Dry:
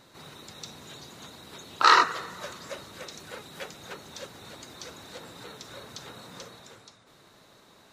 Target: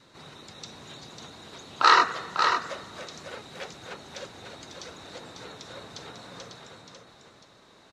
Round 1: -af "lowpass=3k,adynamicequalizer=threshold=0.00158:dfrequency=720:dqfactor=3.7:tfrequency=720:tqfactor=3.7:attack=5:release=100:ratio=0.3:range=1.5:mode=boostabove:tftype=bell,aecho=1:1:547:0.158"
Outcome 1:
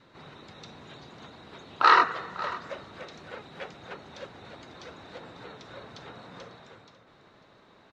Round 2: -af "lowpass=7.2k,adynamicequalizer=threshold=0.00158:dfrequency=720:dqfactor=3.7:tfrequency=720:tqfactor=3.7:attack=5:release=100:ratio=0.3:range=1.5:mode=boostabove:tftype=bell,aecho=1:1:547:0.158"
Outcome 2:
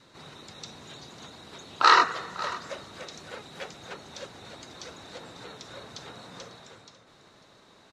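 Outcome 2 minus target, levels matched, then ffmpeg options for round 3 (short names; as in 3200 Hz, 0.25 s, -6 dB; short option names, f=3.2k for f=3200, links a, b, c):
echo-to-direct -10 dB
-af "lowpass=7.2k,adynamicequalizer=threshold=0.00158:dfrequency=720:dqfactor=3.7:tfrequency=720:tqfactor=3.7:attack=5:release=100:ratio=0.3:range=1.5:mode=boostabove:tftype=bell,aecho=1:1:547:0.501"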